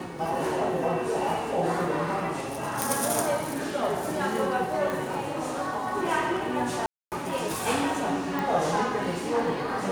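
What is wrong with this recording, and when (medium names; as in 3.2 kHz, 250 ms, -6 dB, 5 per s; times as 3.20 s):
2.82 s: pop
4.90 s: pop
6.86–7.12 s: dropout 258 ms
8.39 s: pop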